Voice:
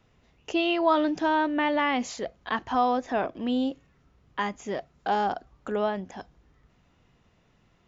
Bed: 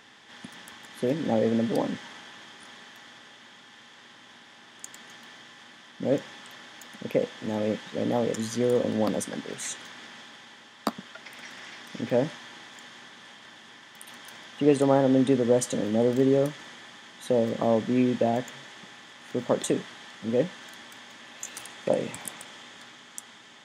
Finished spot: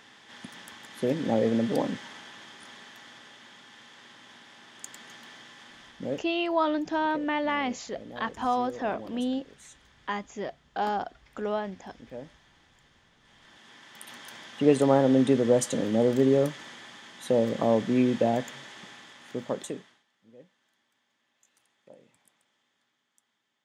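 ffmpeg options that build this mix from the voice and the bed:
-filter_complex "[0:a]adelay=5700,volume=0.708[s0];[1:a]volume=6.68,afade=t=out:st=5.85:d=0.42:silence=0.149624,afade=t=in:st=13.2:d=0.82:silence=0.141254,afade=t=out:st=18.89:d=1.15:silence=0.0398107[s1];[s0][s1]amix=inputs=2:normalize=0"

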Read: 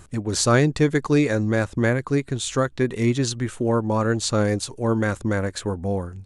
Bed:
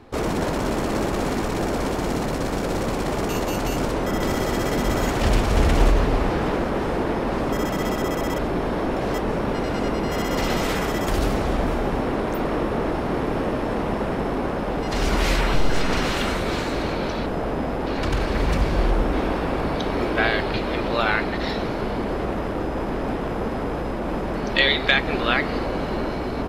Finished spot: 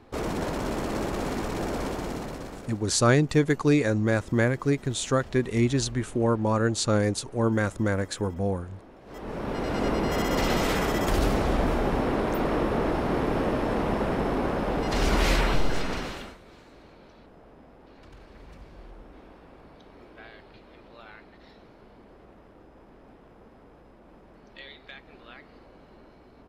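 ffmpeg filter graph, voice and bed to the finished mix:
-filter_complex "[0:a]adelay=2550,volume=0.75[s0];[1:a]volume=7.94,afade=t=out:st=1.82:d=1:silence=0.1,afade=t=in:st=9.05:d=0.84:silence=0.0630957,afade=t=out:st=15.35:d=1.02:silence=0.0595662[s1];[s0][s1]amix=inputs=2:normalize=0"

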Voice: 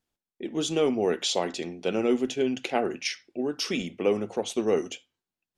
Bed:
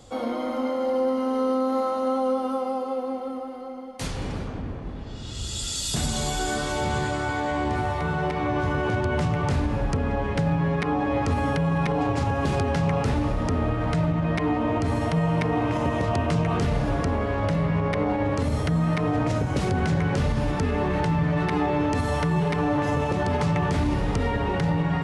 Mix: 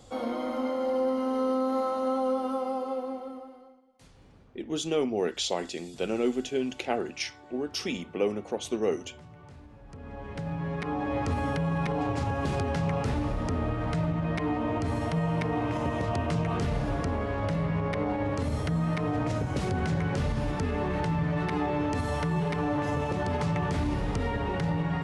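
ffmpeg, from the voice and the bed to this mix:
-filter_complex "[0:a]adelay=4150,volume=0.708[s0];[1:a]volume=7.08,afade=t=out:st=2.91:d=0.9:silence=0.0794328,afade=t=in:st=9.84:d=1.37:silence=0.0944061[s1];[s0][s1]amix=inputs=2:normalize=0"

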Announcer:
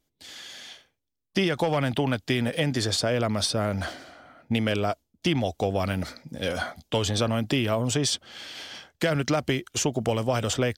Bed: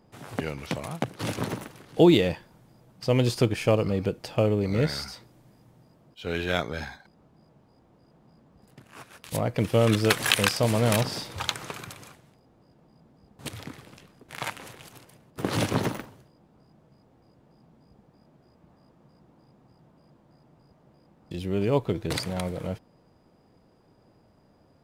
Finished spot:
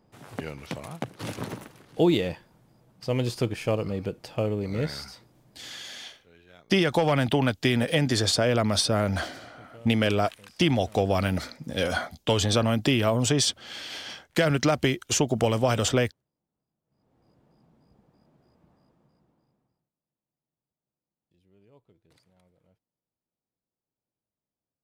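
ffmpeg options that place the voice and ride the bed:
-filter_complex "[0:a]adelay=5350,volume=1.26[s0];[1:a]volume=8.41,afade=t=out:st=5.66:d=0.35:silence=0.0707946,afade=t=in:st=16.85:d=0.45:silence=0.0749894,afade=t=out:st=18.63:d=1.26:silence=0.0316228[s1];[s0][s1]amix=inputs=2:normalize=0"

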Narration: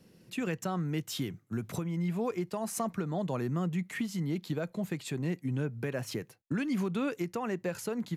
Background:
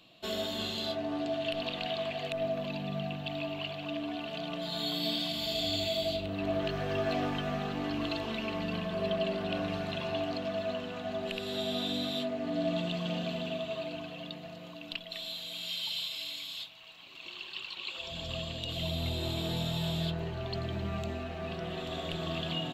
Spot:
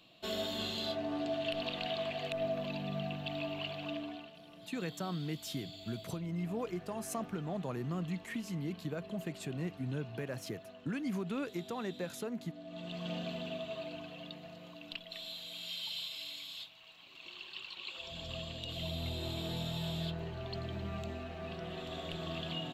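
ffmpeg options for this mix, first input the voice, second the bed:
-filter_complex "[0:a]adelay=4350,volume=0.531[s0];[1:a]volume=3.35,afade=t=out:st=3.88:d=0.47:silence=0.16788,afade=t=in:st=12.68:d=0.42:silence=0.223872[s1];[s0][s1]amix=inputs=2:normalize=0"

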